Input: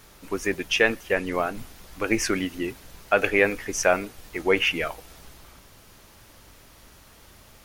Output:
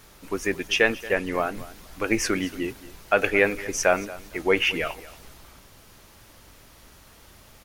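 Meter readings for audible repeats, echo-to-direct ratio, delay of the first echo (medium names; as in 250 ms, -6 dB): 2, -18.5 dB, 228 ms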